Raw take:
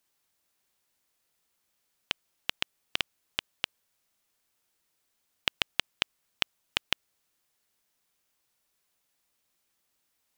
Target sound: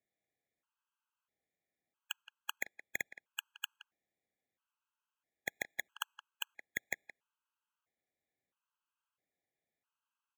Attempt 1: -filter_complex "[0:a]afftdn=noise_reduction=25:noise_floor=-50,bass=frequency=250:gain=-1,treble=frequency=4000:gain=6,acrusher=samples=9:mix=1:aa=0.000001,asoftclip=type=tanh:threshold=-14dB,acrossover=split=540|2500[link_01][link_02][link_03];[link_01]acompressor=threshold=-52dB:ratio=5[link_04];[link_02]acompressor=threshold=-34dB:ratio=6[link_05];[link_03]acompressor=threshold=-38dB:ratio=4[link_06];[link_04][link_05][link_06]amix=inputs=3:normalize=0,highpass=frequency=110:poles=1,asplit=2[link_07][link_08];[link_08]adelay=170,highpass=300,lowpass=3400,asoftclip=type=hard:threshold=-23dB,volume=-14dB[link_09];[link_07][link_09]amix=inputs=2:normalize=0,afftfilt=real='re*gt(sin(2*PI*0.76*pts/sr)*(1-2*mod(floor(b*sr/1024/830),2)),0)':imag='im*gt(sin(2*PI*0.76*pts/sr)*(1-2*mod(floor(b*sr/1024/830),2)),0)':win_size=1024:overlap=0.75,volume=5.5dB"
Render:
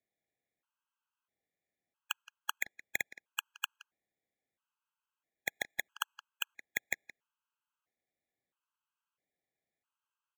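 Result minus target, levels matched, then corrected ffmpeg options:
soft clipping: distortion −4 dB
-filter_complex "[0:a]afftdn=noise_reduction=25:noise_floor=-50,bass=frequency=250:gain=-1,treble=frequency=4000:gain=6,acrusher=samples=9:mix=1:aa=0.000001,asoftclip=type=tanh:threshold=-23dB,acrossover=split=540|2500[link_01][link_02][link_03];[link_01]acompressor=threshold=-52dB:ratio=5[link_04];[link_02]acompressor=threshold=-34dB:ratio=6[link_05];[link_03]acompressor=threshold=-38dB:ratio=4[link_06];[link_04][link_05][link_06]amix=inputs=3:normalize=0,highpass=frequency=110:poles=1,asplit=2[link_07][link_08];[link_08]adelay=170,highpass=300,lowpass=3400,asoftclip=type=hard:threshold=-23dB,volume=-14dB[link_09];[link_07][link_09]amix=inputs=2:normalize=0,afftfilt=real='re*gt(sin(2*PI*0.76*pts/sr)*(1-2*mod(floor(b*sr/1024/830),2)),0)':imag='im*gt(sin(2*PI*0.76*pts/sr)*(1-2*mod(floor(b*sr/1024/830),2)),0)':win_size=1024:overlap=0.75,volume=5.5dB"

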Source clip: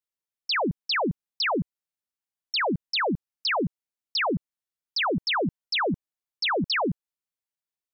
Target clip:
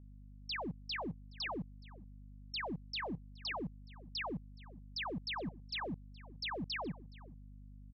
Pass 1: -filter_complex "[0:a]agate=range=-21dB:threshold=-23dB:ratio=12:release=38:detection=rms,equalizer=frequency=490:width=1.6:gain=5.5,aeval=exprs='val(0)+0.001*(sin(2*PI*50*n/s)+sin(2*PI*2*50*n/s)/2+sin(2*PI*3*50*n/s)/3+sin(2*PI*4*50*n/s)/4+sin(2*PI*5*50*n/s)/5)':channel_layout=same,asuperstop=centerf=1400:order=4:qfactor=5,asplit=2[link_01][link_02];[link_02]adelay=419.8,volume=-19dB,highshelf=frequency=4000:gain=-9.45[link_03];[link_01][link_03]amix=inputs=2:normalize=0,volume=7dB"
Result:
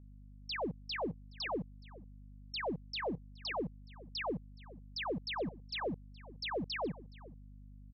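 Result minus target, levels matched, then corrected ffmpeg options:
500 Hz band +5.5 dB
-filter_complex "[0:a]agate=range=-21dB:threshold=-23dB:ratio=12:release=38:detection=rms,equalizer=frequency=490:width=1.6:gain=-4,aeval=exprs='val(0)+0.001*(sin(2*PI*50*n/s)+sin(2*PI*2*50*n/s)/2+sin(2*PI*3*50*n/s)/3+sin(2*PI*4*50*n/s)/4+sin(2*PI*5*50*n/s)/5)':channel_layout=same,asuperstop=centerf=1400:order=4:qfactor=5,asplit=2[link_01][link_02];[link_02]adelay=419.8,volume=-19dB,highshelf=frequency=4000:gain=-9.45[link_03];[link_01][link_03]amix=inputs=2:normalize=0,volume=7dB"

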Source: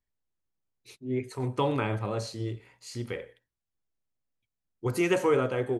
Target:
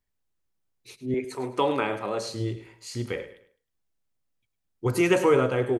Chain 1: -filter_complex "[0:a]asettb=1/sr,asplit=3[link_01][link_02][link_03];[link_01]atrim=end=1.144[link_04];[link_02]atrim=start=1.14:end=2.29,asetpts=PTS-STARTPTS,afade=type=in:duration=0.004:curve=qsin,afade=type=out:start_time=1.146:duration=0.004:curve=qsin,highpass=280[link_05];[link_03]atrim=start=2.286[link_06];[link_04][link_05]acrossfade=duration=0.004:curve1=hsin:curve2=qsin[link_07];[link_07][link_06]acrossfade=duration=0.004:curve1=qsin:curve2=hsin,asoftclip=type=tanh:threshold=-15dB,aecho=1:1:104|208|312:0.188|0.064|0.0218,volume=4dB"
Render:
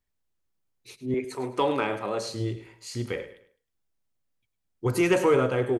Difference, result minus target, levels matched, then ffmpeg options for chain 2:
soft clipping: distortion +20 dB
-filter_complex "[0:a]asettb=1/sr,asplit=3[link_01][link_02][link_03];[link_01]atrim=end=1.144[link_04];[link_02]atrim=start=1.14:end=2.29,asetpts=PTS-STARTPTS,afade=type=in:duration=0.004:curve=qsin,afade=type=out:start_time=1.146:duration=0.004:curve=qsin,highpass=280[link_05];[link_03]atrim=start=2.286[link_06];[link_04][link_05]acrossfade=duration=0.004:curve1=hsin:curve2=qsin[link_07];[link_07][link_06]acrossfade=duration=0.004:curve1=qsin:curve2=hsin,asoftclip=type=tanh:threshold=-4dB,aecho=1:1:104|208|312:0.188|0.064|0.0218,volume=4dB"

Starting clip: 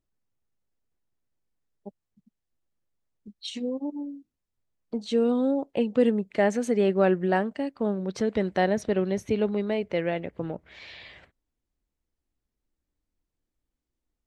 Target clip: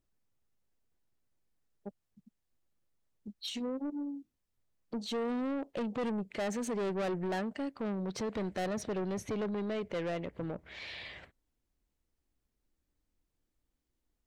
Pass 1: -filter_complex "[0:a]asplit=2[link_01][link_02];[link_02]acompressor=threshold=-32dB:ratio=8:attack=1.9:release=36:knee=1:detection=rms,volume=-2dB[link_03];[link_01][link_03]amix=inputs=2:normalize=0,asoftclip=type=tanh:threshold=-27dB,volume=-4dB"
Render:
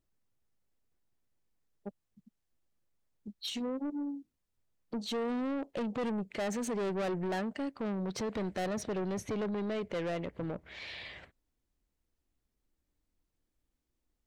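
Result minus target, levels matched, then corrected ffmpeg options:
downward compressor: peak gain reduction −7 dB
-filter_complex "[0:a]asplit=2[link_01][link_02];[link_02]acompressor=threshold=-40dB:ratio=8:attack=1.9:release=36:knee=1:detection=rms,volume=-2dB[link_03];[link_01][link_03]amix=inputs=2:normalize=0,asoftclip=type=tanh:threshold=-27dB,volume=-4dB"

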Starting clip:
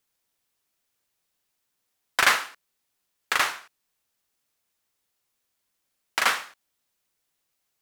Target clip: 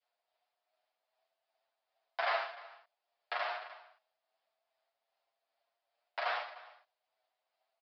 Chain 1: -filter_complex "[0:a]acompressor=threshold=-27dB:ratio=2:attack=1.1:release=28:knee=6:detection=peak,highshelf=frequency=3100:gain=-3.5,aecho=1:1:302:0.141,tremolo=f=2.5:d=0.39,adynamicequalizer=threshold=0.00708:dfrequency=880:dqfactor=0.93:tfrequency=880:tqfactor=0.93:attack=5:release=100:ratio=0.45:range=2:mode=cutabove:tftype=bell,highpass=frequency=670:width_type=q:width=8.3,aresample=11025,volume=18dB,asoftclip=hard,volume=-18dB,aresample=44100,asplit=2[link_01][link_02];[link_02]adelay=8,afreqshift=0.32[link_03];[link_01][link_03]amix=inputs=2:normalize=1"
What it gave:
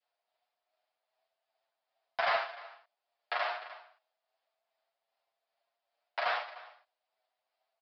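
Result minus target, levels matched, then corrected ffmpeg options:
downward compressor: peak gain reduction −3.5 dB
-filter_complex "[0:a]acompressor=threshold=-34dB:ratio=2:attack=1.1:release=28:knee=6:detection=peak,highshelf=frequency=3100:gain=-3.5,aecho=1:1:302:0.141,tremolo=f=2.5:d=0.39,adynamicequalizer=threshold=0.00708:dfrequency=880:dqfactor=0.93:tfrequency=880:tqfactor=0.93:attack=5:release=100:ratio=0.45:range=2:mode=cutabove:tftype=bell,highpass=frequency=670:width_type=q:width=8.3,aresample=11025,volume=18dB,asoftclip=hard,volume=-18dB,aresample=44100,asplit=2[link_01][link_02];[link_02]adelay=8,afreqshift=0.32[link_03];[link_01][link_03]amix=inputs=2:normalize=1"

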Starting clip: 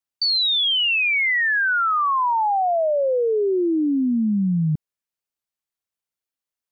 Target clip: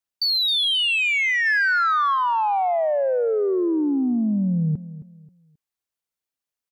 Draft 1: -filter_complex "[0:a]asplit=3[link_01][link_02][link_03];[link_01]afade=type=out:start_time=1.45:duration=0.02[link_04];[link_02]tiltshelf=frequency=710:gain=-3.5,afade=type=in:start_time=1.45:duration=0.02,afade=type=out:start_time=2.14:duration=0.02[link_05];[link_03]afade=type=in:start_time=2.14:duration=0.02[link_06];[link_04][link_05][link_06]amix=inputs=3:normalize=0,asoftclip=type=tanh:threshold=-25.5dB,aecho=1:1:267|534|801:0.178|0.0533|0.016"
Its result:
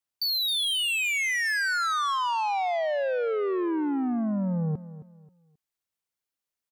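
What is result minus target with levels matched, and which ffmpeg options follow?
soft clipping: distortion +12 dB
-filter_complex "[0:a]asplit=3[link_01][link_02][link_03];[link_01]afade=type=out:start_time=1.45:duration=0.02[link_04];[link_02]tiltshelf=frequency=710:gain=-3.5,afade=type=in:start_time=1.45:duration=0.02,afade=type=out:start_time=2.14:duration=0.02[link_05];[link_03]afade=type=in:start_time=2.14:duration=0.02[link_06];[link_04][link_05][link_06]amix=inputs=3:normalize=0,asoftclip=type=tanh:threshold=-15dB,aecho=1:1:267|534|801:0.178|0.0533|0.016"

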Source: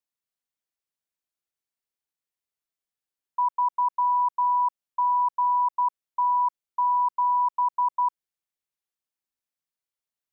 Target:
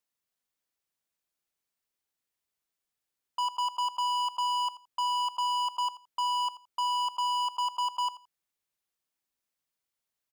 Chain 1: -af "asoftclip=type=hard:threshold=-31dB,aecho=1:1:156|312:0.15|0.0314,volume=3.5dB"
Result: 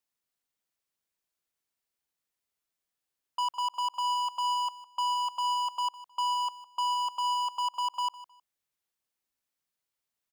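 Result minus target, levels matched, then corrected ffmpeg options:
echo 72 ms late
-af "asoftclip=type=hard:threshold=-31dB,aecho=1:1:84|168:0.15|0.0314,volume=3.5dB"

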